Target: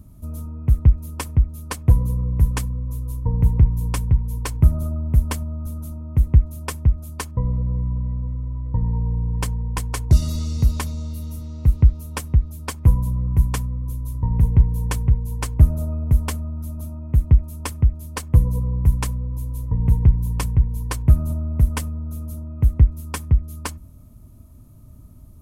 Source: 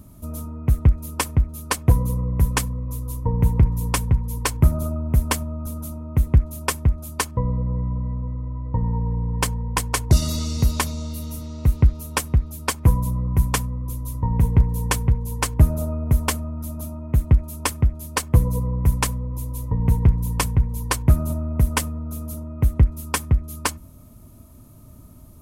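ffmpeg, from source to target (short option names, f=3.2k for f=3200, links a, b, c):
-af "lowshelf=f=190:g=10.5,volume=-7dB"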